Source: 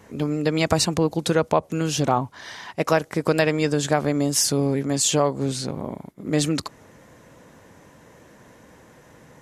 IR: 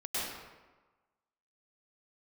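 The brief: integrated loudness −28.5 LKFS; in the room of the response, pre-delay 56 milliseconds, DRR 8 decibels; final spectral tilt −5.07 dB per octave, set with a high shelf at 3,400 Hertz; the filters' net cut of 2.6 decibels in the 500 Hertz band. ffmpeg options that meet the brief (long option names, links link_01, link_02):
-filter_complex "[0:a]equalizer=frequency=500:width_type=o:gain=-3,highshelf=frequency=3400:gain=-6.5,asplit=2[link_01][link_02];[1:a]atrim=start_sample=2205,adelay=56[link_03];[link_02][link_03]afir=irnorm=-1:irlink=0,volume=-13.5dB[link_04];[link_01][link_04]amix=inputs=2:normalize=0,volume=-4dB"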